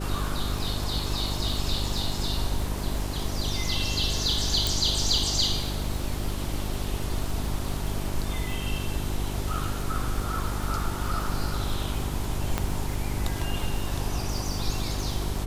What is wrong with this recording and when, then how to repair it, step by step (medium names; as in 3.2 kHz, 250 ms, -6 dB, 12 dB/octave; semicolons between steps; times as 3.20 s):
crackle 59 per s -32 dBFS
hum 50 Hz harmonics 8 -32 dBFS
4.67 s: pop
12.58 s: pop -11 dBFS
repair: de-click; de-hum 50 Hz, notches 8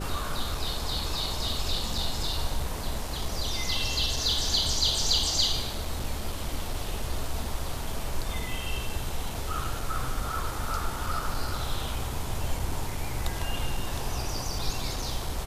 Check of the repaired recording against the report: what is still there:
4.67 s: pop